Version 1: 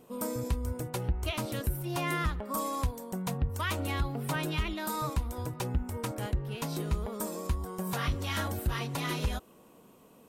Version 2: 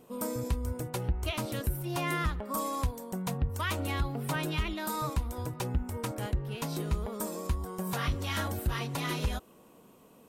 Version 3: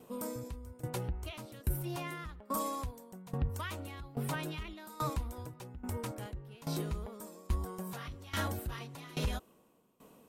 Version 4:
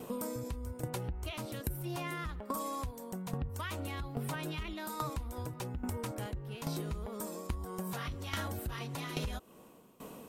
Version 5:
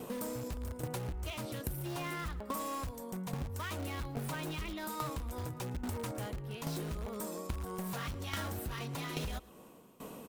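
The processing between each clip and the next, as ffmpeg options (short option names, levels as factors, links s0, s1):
-af anull
-af "alimiter=level_in=1.06:limit=0.0631:level=0:latency=1:release=10,volume=0.944,aeval=exprs='val(0)*pow(10,-19*if(lt(mod(1.2*n/s,1),2*abs(1.2)/1000),1-mod(1.2*n/s,1)/(2*abs(1.2)/1000),(mod(1.2*n/s,1)-2*abs(1.2)/1000)/(1-2*abs(1.2)/1000))/20)':c=same,volume=1.19"
-af "acompressor=threshold=0.00501:ratio=6,volume=3.35"
-filter_complex "[0:a]asplit=2[s0][s1];[s1]aeval=exprs='(mod(50.1*val(0)+1,2)-1)/50.1':c=same,volume=0.355[s2];[s0][s2]amix=inputs=2:normalize=0,aecho=1:1:112:0.0891,volume=0.841"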